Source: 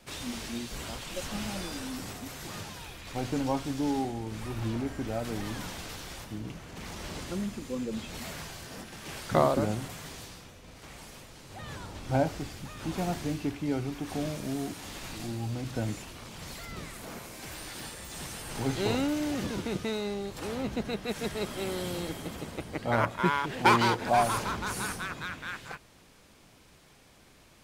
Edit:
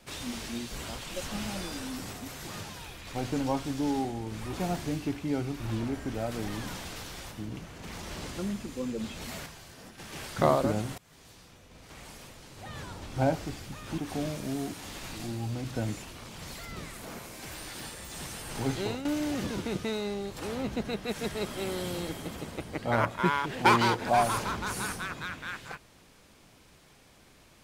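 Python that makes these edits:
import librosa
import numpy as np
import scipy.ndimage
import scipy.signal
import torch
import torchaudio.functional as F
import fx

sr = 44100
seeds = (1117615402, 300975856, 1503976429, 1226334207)

y = fx.edit(x, sr, fx.clip_gain(start_s=8.39, length_s=0.52, db=-6.0),
    fx.fade_in_from(start_s=9.91, length_s=1.05, floor_db=-24.0),
    fx.move(start_s=12.91, length_s=1.07, to_s=4.53),
    fx.fade_out_to(start_s=18.71, length_s=0.34, floor_db=-12.5), tone=tone)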